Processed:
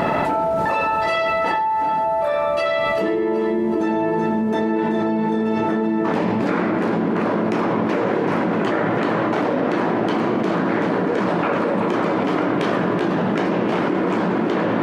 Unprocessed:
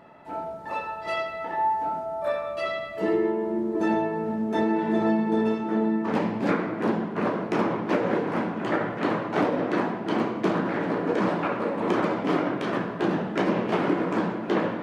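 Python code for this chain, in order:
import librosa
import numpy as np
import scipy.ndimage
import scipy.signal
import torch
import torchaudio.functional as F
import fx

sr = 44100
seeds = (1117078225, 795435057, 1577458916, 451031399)

y = fx.echo_split(x, sr, split_hz=520.0, low_ms=538, high_ms=380, feedback_pct=52, wet_db=-10.0)
y = fx.env_flatten(y, sr, amount_pct=100)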